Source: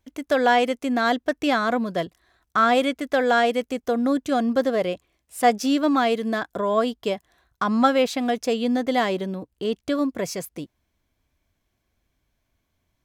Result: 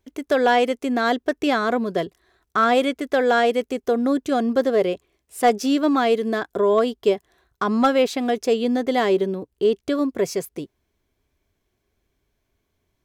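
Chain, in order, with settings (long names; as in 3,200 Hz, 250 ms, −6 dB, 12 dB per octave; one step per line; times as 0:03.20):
parametric band 400 Hz +11.5 dB 0.32 octaves
hard clipping −8.5 dBFS, distortion −31 dB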